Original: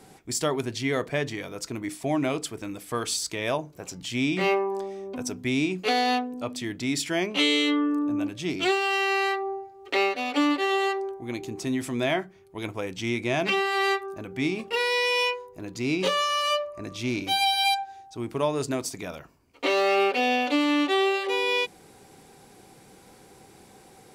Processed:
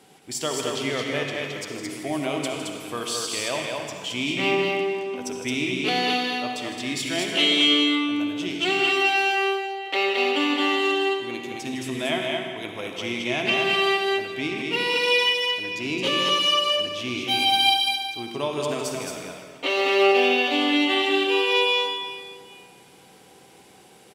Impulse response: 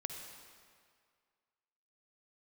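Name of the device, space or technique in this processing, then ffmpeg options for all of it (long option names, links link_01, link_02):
stadium PA: -filter_complex "[0:a]highpass=frequency=190:poles=1,equalizer=frequency=3000:width_type=o:width=0.47:gain=8,aecho=1:1:157.4|218.7:0.282|0.708[link_01];[1:a]atrim=start_sample=2205[link_02];[link_01][link_02]afir=irnorm=-1:irlink=0"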